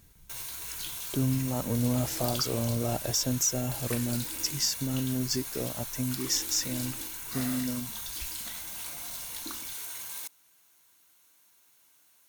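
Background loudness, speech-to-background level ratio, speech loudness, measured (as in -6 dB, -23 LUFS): -35.0 LUFS, 4.5 dB, -30.5 LUFS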